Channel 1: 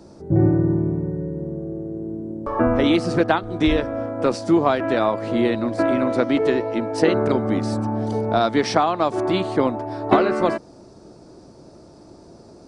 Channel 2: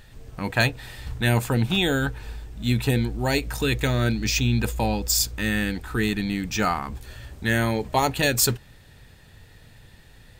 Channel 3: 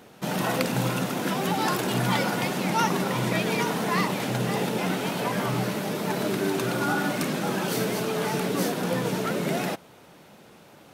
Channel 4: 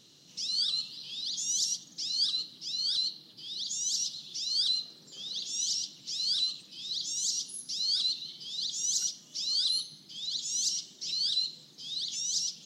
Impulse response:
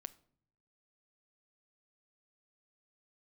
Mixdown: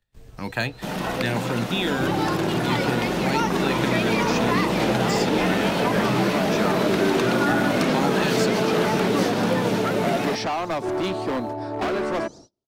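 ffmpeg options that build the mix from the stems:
-filter_complex "[0:a]agate=range=0.0224:threshold=0.0141:ratio=3:detection=peak,volume=10.6,asoftclip=hard,volume=0.0944,adelay=1700,volume=0.891[s0];[1:a]volume=0.75,asplit=2[s1][s2];[s2]volume=0.0794[s3];[2:a]dynaudnorm=f=590:g=9:m=3.76,adelay=600,volume=0.944[s4];[3:a]acompressor=threshold=0.0251:ratio=6,volume=0.1[s5];[4:a]atrim=start_sample=2205[s6];[s3][s6]afir=irnorm=-1:irlink=0[s7];[s0][s1][s4][s5][s7]amix=inputs=5:normalize=0,agate=range=0.0355:threshold=0.00501:ratio=16:detection=peak,acrossover=split=140|450|6100[s8][s9][s10][s11];[s8]acompressor=threshold=0.01:ratio=4[s12];[s9]acompressor=threshold=0.0891:ratio=4[s13];[s10]acompressor=threshold=0.0794:ratio=4[s14];[s11]acompressor=threshold=0.00398:ratio=4[s15];[s12][s13][s14][s15]amix=inputs=4:normalize=0"

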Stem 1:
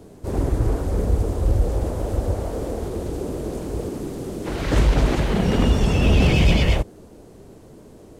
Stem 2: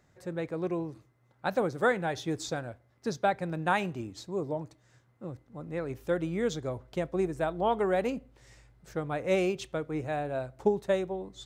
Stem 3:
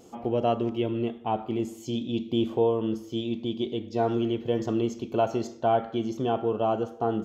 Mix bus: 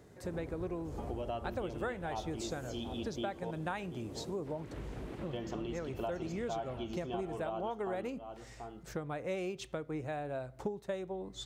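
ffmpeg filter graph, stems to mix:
-filter_complex "[0:a]highpass=57,acrossover=split=3600[s0][s1];[s1]acompressor=threshold=0.00355:ratio=4:attack=1:release=60[s2];[s0][s2]amix=inputs=2:normalize=0,volume=0.178,afade=t=out:st=4.39:d=0.28:silence=0.375837,asplit=2[s3][s4];[s4]volume=0.631[s5];[1:a]volume=1.33[s6];[2:a]equalizer=f=140:t=o:w=2.9:g=-8,bandreject=f=470:w=12,adelay=850,volume=0.944,asplit=3[s7][s8][s9];[s7]atrim=end=3.51,asetpts=PTS-STARTPTS,afade=t=out:st=3.506:d=0.004:c=hsin[s10];[s8]atrim=start=3.51:end=5.26,asetpts=PTS-STARTPTS,volume=0[s11];[s9]atrim=start=5.26,asetpts=PTS-STARTPTS,afade=t=in:d=0.004:c=hsin[s12];[s10][s11][s12]concat=n=3:v=0:a=1,asplit=2[s13][s14];[s14]volume=0.158[s15];[s5][s15]amix=inputs=2:normalize=0,aecho=0:1:736:1[s16];[s3][s6][s13][s16]amix=inputs=4:normalize=0,acompressor=threshold=0.0141:ratio=4"

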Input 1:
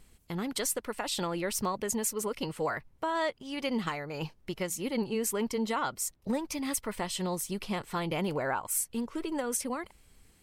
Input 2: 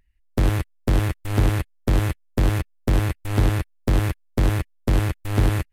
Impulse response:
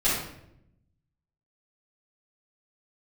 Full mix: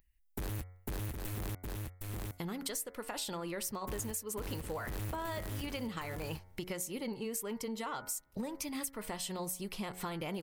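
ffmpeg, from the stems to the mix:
-filter_complex "[0:a]asoftclip=type=tanh:threshold=0.119,adelay=2100,volume=1.19[s0];[1:a]highshelf=f=5200:g=7.5,asoftclip=type=hard:threshold=0.0668,volume=0.422,asplit=3[s1][s2][s3];[s1]atrim=end=1.55,asetpts=PTS-STARTPTS,afade=t=out:st=1.546:d=0.004:c=hsin[s4];[s2]atrim=start=1.55:end=3.83,asetpts=PTS-STARTPTS,volume=0[s5];[s3]atrim=start=3.83,asetpts=PTS-STARTPTS,afade=t=in:d=0.004:c=hsin[s6];[s4][s5][s6]concat=n=3:v=0:a=1,asplit=2[s7][s8];[s8]volume=0.473,aecho=0:1:762:1[s9];[s0][s7][s9]amix=inputs=3:normalize=0,highshelf=f=11000:g=11.5,bandreject=f=91.02:t=h:w=4,bandreject=f=182.04:t=h:w=4,bandreject=f=273.06:t=h:w=4,bandreject=f=364.08:t=h:w=4,bandreject=f=455.1:t=h:w=4,bandreject=f=546.12:t=h:w=4,bandreject=f=637.14:t=h:w=4,bandreject=f=728.16:t=h:w=4,bandreject=f=819.18:t=h:w=4,bandreject=f=910.2:t=h:w=4,bandreject=f=1001.22:t=h:w=4,bandreject=f=1092.24:t=h:w=4,bandreject=f=1183.26:t=h:w=4,bandreject=f=1274.28:t=h:w=4,bandreject=f=1365.3:t=h:w=4,bandreject=f=1456.32:t=h:w=4,bandreject=f=1547.34:t=h:w=4,bandreject=f=1638.36:t=h:w=4,bandreject=f=1729.38:t=h:w=4,bandreject=f=1820.4:t=h:w=4,bandreject=f=1911.42:t=h:w=4,bandreject=f=2002.44:t=h:w=4,bandreject=f=2093.46:t=h:w=4,bandreject=f=2184.48:t=h:w=4,bandreject=f=2275.5:t=h:w=4,acompressor=threshold=0.0141:ratio=5"

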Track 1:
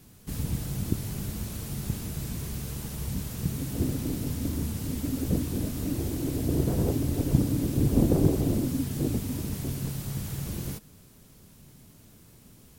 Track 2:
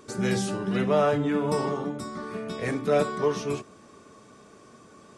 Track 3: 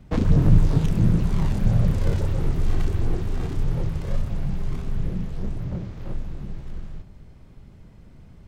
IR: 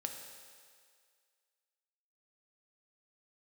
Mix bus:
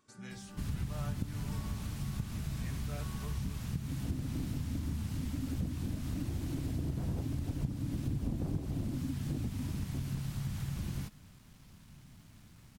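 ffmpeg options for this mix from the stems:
-filter_complex "[0:a]acrusher=bits=8:mix=0:aa=0.5,aemphasis=mode=reproduction:type=50kf,adelay=300,volume=0.944[s0];[1:a]volume=0.133[s1];[s0][s1]amix=inputs=2:normalize=0,equalizer=f=440:w=1.2:g=-12,acompressor=threshold=0.0251:ratio=5"

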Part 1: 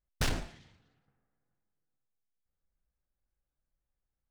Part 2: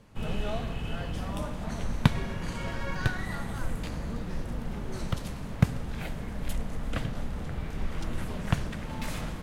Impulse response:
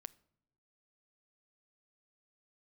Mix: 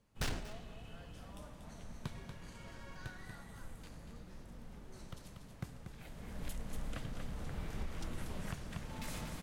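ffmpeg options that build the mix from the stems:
-filter_complex "[0:a]volume=0.708,asplit=2[s0][s1];[s1]volume=0.133[s2];[1:a]bass=f=250:g=-1,treble=f=4000:g=5,asoftclip=type=tanh:threshold=0.211,volume=0.447,afade=t=in:st=6.04:d=0.48:silence=0.298538,asplit=2[s3][s4];[s4]volume=0.422[s5];[s2][s5]amix=inputs=2:normalize=0,aecho=0:1:237:1[s6];[s0][s3][s6]amix=inputs=3:normalize=0,alimiter=level_in=2.11:limit=0.0631:level=0:latency=1:release=439,volume=0.473"

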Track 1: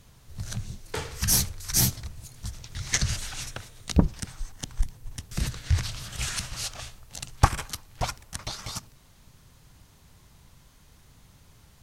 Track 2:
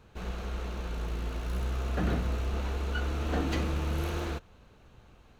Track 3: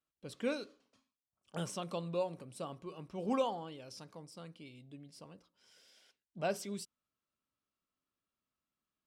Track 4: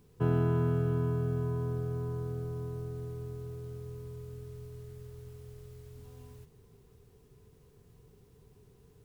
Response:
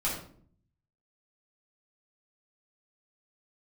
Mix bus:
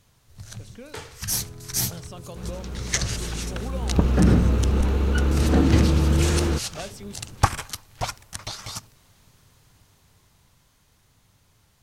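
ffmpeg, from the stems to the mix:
-filter_complex "[0:a]lowshelf=f=200:g=-6.5,volume=0.631[s0];[1:a]equalizer=f=180:t=o:w=2.9:g=10,bandreject=f=680:w=12,adelay=2200,volume=0.841,afade=t=in:st=3.8:d=0.27:silence=0.421697[s1];[2:a]acompressor=threshold=0.0158:ratio=6,adelay=350,volume=0.708[s2];[3:a]adelay=1200,volume=0.119[s3];[s0][s1][s2][s3]amix=inputs=4:normalize=0,equalizer=f=100:t=o:w=0.41:g=6,dynaudnorm=f=230:g=21:m=2.66"

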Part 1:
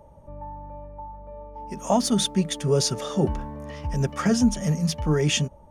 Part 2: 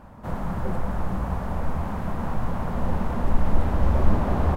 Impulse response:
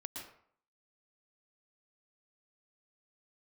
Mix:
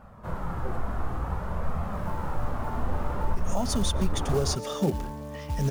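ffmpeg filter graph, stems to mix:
-filter_complex "[0:a]acrusher=bits=5:mode=log:mix=0:aa=0.000001,adelay=1650,volume=0.794,asplit=2[s0][s1];[s1]volume=0.158[s2];[1:a]equalizer=f=1300:t=o:w=0.35:g=5.5,flanger=delay=1.5:depth=1.4:regen=-47:speed=0.55:shape=triangular,volume=1[s3];[2:a]atrim=start_sample=2205[s4];[s2][s4]afir=irnorm=-1:irlink=0[s5];[s0][s3][s5]amix=inputs=3:normalize=0,alimiter=limit=0.168:level=0:latency=1:release=227"

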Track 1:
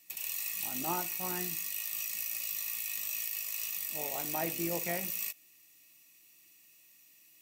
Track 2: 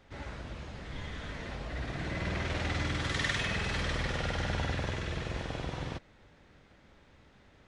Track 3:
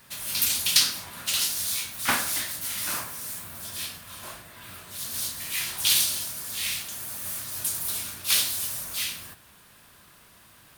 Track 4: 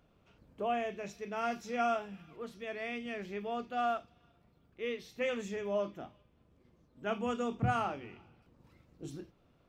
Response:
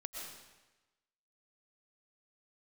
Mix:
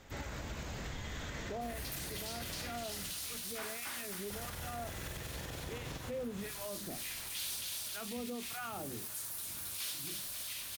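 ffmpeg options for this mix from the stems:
-filter_complex "[0:a]acompressor=threshold=0.00562:ratio=6,volume=0.15[s0];[1:a]lowpass=f=7300:t=q:w=4.7,acompressor=threshold=0.0141:ratio=6,volume=1.33,asplit=3[s1][s2][s3];[s1]atrim=end=2.84,asetpts=PTS-STARTPTS,afade=t=out:st=2.836:d=0.004:c=hsin[s4];[s2]atrim=start=2.84:end=4.3,asetpts=PTS-STARTPTS,volume=0[s5];[s3]atrim=start=4.3,asetpts=PTS-STARTPTS,afade=t=in:d=0.004:c=hsin[s6];[s4][s5][s6]concat=n=3:v=0:a=1,asplit=2[s7][s8];[s8]volume=0.473[s9];[2:a]equalizer=f=190:w=1.5:g=-6,asoftclip=type=tanh:threshold=0.133,adelay=1500,volume=0.316,asplit=2[s10][s11];[s11]volume=0.708[s12];[3:a]lowshelf=f=320:g=7.5,bandreject=f=50:t=h:w=6,bandreject=f=100:t=h:w=6,bandreject=f=150:t=h:w=6,bandreject=f=200:t=h:w=6,acrossover=split=1000[s13][s14];[s13]aeval=exprs='val(0)*(1-1/2+1/2*cos(2*PI*1.5*n/s))':c=same[s15];[s14]aeval=exprs='val(0)*(1-1/2-1/2*cos(2*PI*1.5*n/s))':c=same[s16];[s15][s16]amix=inputs=2:normalize=0,adelay=900,volume=1.26[s17];[s9][s12]amix=inputs=2:normalize=0,aecho=0:1:269|538|807|1076|1345|1614:1|0.45|0.202|0.0911|0.041|0.0185[s18];[s0][s7][s10][s17][s18]amix=inputs=5:normalize=0,alimiter=level_in=2.66:limit=0.0631:level=0:latency=1:release=101,volume=0.376"

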